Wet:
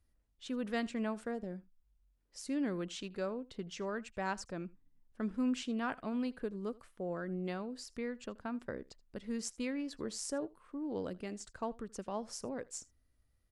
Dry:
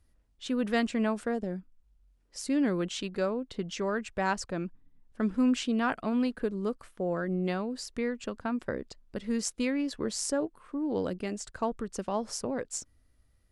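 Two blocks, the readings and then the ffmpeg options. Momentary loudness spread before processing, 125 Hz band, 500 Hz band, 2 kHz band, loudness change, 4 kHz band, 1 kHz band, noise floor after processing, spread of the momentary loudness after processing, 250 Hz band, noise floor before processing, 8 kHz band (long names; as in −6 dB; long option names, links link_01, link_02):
9 LU, −8.0 dB, −8.0 dB, −8.0 dB, −8.0 dB, −8.0 dB, −8.0 dB, −75 dBFS, 10 LU, −8.0 dB, −68 dBFS, −8.0 dB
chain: -af "aecho=1:1:79:0.075,volume=-8dB"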